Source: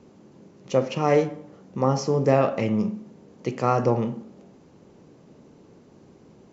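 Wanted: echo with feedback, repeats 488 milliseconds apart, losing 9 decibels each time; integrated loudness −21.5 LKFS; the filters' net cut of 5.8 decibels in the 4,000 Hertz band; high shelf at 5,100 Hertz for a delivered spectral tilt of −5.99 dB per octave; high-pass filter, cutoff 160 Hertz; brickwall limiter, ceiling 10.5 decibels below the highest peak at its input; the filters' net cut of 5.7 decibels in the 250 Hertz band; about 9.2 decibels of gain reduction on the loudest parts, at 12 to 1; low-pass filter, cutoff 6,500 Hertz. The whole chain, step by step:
high-pass filter 160 Hz
low-pass filter 6,500 Hz
parametric band 250 Hz −6 dB
parametric band 4,000 Hz −3.5 dB
high-shelf EQ 5,100 Hz −8.5 dB
downward compressor 12 to 1, threshold −25 dBFS
brickwall limiter −26 dBFS
repeating echo 488 ms, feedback 35%, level −9 dB
level +15.5 dB

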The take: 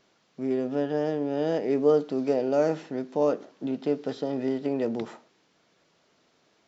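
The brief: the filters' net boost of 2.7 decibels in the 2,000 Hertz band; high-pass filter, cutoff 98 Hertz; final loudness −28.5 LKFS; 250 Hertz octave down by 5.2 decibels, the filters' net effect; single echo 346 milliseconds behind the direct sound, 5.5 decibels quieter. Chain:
high-pass filter 98 Hz
parametric band 250 Hz −6 dB
parametric band 2,000 Hz +3.5 dB
single-tap delay 346 ms −5.5 dB

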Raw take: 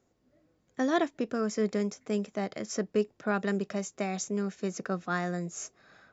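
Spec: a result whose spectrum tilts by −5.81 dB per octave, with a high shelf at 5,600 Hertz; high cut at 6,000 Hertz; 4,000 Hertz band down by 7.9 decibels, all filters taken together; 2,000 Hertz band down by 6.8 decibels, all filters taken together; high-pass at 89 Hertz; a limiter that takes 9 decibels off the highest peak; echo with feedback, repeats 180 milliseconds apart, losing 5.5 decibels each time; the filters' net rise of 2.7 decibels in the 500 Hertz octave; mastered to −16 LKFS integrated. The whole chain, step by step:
high-pass filter 89 Hz
low-pass filter 6,000 Hz
parametric band 500 Hz +4 dB
parametric band 2,000 Hz −8 dB
parametric band 4,000 Hz −4 dB
high-shelf EQ 5,600 Hz −6.5 dB
brickwall limiter −23.5 dBFS
repeating echo 180 ms, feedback 53%, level −5.5 dB
level +17.5 dB

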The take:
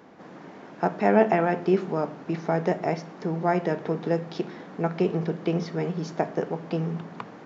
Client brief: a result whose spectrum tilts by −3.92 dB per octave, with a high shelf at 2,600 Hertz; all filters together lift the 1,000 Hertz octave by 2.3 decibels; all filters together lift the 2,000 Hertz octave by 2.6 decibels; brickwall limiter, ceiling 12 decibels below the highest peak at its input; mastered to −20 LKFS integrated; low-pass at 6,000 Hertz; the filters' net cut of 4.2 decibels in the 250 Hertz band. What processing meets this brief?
low-pass filter 6,000 Hz
parametric band 250 Hz −7.5 dB
parametric band 1,000 Hz +4 dB
parametric band 2,000 Hz +3.5 dB
high-shelf EQ 2,600 Hz −4 dB
level +11.5 dB
brickwall limiter −6.5 dBFS

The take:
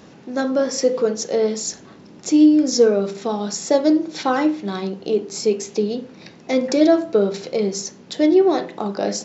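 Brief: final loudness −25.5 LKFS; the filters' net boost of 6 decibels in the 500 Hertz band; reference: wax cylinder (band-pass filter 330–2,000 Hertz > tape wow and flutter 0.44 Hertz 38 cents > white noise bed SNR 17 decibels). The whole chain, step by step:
band-pass filter 330–2,000 Hz
parametric band 500 Hz +8.5 dB
tape wow and flutter 0.44 Hz 38 cents
white noise bed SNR 17 dB
level −10 dB

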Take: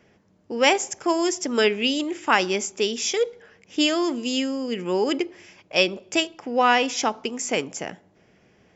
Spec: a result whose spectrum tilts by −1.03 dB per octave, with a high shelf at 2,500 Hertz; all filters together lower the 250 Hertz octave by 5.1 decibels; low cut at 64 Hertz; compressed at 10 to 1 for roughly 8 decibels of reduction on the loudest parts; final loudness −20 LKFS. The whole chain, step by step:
high-pass filter 64 Hz
parametric band 250 Hz −7 dB
high-shelf EQ 2,500 Hz +3.5 dB
downward compressor 10 to 1, threshold −20 dBFS
level +6.5 dB

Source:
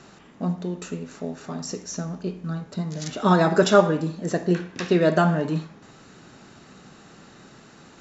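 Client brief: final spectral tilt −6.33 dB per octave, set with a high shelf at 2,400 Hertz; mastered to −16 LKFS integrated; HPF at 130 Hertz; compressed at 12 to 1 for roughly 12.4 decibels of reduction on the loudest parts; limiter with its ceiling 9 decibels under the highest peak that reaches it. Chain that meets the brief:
high-pass filter 130 Hz
high-shelf EQ 2,400 Hz −5 dB
downward compressor 12 to 1, threshold −22 dBFS
level +17 dB
brickwall limiter −5 dBFS

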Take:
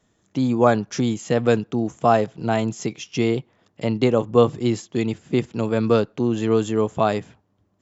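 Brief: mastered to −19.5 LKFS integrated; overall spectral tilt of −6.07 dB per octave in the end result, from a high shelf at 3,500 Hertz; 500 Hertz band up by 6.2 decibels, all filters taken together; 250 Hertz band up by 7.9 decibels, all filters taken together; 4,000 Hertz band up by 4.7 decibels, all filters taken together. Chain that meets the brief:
parametric band 250 Hz +8 dB
parametric band 500 Hz +5 dB
high-shelf EQ 3,500 Hz −4 dB
parametric band 4,000 Hz +8.5 dB
level −4 dB

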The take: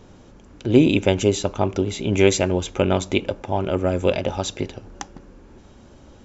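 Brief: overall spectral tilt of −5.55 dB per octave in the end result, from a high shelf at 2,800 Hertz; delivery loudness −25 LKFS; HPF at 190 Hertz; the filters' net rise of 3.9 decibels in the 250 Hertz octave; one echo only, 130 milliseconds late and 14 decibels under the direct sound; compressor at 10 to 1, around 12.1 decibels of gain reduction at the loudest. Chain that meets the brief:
high-pass filter 190 Hz
parametric band 250 Hz +6.5 dB
high-shelf EQ 2,800 Hz −6 dB
downward compressor 10 to 1, threshold −17 dBFS
single-tap delay 130 ms −14 dB
level −0.5 dB

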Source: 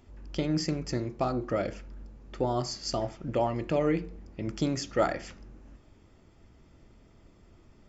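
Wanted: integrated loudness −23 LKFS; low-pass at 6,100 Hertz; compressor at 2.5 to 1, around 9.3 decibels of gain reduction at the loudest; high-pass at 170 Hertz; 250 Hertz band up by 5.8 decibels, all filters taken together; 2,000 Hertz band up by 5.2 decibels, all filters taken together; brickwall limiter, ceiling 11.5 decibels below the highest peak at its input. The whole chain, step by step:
high-pass filter 170 Hz
low-pass filter 6,100 Hz
parametric band 250 Hz +8.5 dB
parametric band 2,000 Hz +6 dB
downward compressor 2.5 to 1, threshold −33 dBFS
level +16.5 dB
brickwall limiter −12 dBFS

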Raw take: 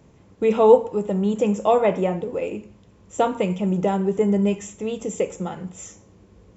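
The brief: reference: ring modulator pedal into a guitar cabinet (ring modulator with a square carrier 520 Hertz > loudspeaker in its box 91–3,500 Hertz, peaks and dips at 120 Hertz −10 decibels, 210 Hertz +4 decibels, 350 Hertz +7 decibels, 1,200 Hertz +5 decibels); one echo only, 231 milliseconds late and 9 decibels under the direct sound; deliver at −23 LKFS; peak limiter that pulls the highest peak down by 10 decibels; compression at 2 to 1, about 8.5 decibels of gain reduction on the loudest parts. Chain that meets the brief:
downward compressor 2 to 1, threshold −23 dBFS
brickwall limiter −21.5 dBFS
single-tap delay 231 ms −9 dB
ring modulator with a square carrier 520 Hz
loudspeaker in its box 91–3,500 Hz, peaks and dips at 120 Hz −10 dB, 210 Hz +4 dB, 350 Hz +7 dB, 1,200 Hz +5 dB
level +5 dB

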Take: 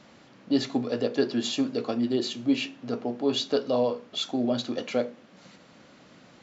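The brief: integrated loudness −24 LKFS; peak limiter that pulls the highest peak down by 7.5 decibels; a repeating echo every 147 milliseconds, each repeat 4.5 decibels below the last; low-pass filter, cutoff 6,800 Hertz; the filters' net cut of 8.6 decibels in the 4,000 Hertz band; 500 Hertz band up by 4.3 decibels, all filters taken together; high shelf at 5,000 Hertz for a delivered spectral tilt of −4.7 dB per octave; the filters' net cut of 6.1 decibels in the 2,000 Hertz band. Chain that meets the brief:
low-pass filter 6,800 Hz
parametric band 500 Hz +5.5 dB
parametric band 2,000 Hz −5.5 dB
parametric band 4,000 Hz −7 dB
high-shelf EQ 5,000 Hz −3.5 dB
brickwall limiter −16 dBFS
repeating echo 147 ms, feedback 60%, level −4.5 dB
level +2.5 dB

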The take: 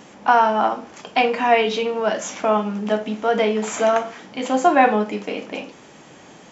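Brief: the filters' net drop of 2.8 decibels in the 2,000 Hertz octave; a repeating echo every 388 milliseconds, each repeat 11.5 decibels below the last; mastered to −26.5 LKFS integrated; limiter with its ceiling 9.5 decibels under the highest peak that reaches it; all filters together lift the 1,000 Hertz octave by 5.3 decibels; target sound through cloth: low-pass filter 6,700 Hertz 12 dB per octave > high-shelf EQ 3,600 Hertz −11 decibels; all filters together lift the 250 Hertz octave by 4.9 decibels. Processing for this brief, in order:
parametric band 250 Hz +5.5 dB
parametric band 1,000 Hz +8.5 dB
parametric band 2,000 Hz −4.5 dB
brickwall limiter −7 dBFS
low-pass filter 6,700 Hz 12 dB per octave
high-shelf EQ 3,600 Hz −11 dB
repeating echo 388 ms, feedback 27%, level −11.5 dB
level −7.5 dB

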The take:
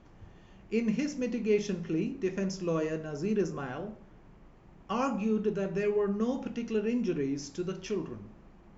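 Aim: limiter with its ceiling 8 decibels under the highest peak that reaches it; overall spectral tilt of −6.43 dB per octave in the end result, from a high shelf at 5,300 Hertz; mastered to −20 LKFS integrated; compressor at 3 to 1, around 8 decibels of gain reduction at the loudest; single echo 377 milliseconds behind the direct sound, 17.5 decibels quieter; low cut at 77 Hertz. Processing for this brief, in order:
high-pass filter 77 Hz
high-shelf EQ 5,300 Hz −5 dB
downward compressor 3 to 1, threshold −34 dBFS
brickwall limiter −31.5 dBFS
single-tap delay 377 ms −17.5 dB
level +20 dB

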